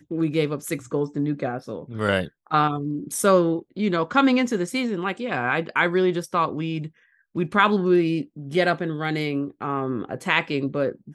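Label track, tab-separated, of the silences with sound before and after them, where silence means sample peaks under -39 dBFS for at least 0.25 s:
6.880000	7.350000	silence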